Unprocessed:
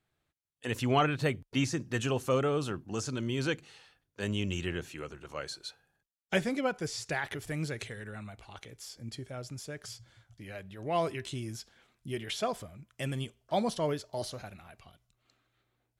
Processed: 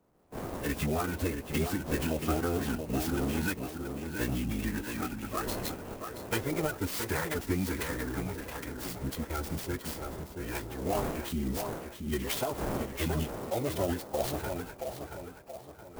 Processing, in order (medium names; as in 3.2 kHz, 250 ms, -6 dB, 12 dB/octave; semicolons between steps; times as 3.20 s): coarse spectral quantiser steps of 15 dB; wind noise 620 Hz -44 dBFS; gate with hold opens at -41 dBFS; compression 12:1, threshold -34 dBFS, peak gain reduction 13.5 dB; tape echo 676 ms, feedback 48%, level -5 dB, low-pass 2.5 kHz; formant-preserving pitch shift -9 st; sampling jitter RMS 0.052 ms; trim +7.5 dB